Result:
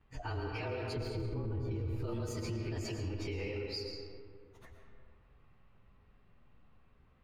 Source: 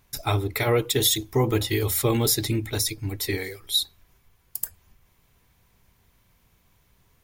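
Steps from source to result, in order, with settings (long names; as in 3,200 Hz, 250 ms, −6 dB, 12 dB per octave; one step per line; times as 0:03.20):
partials spread apart or drawn together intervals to 108%
0:00.96–0:02.04: RIAA equalisation playback
low-pass that shuts in the quiet parts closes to 2,600 Hz, open at −17 dBFS
downward compressor, threshold −31 dBFS, peak gain reduction 19.5 dB
high-shelf EQ 4,900 Hz −11.5 dB
convolution reverb RT60 2.3 s, pre-delay 75 ms, DRR 2.5 dB
brickwall limiter −30 dBFS, peak gain reduction 11 dB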